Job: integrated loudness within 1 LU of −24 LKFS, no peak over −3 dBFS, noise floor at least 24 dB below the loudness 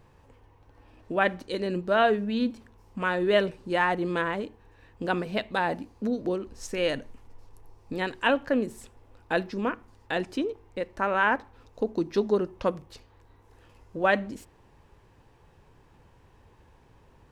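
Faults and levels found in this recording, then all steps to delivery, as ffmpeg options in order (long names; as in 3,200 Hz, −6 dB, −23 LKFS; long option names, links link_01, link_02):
integrated loudness −28.0 LKFS; sample peak −8.0 dBFS; target loudness −24.0 LKFS
→ -af "volume=4dB"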